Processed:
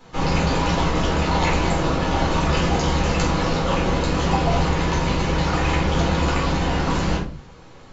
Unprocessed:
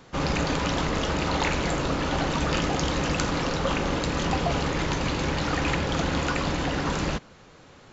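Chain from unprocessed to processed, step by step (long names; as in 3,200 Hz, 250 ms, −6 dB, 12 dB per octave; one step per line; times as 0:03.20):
rectangular room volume 250 cubic metres, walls furnished, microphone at 4.1 metres
level −4 dB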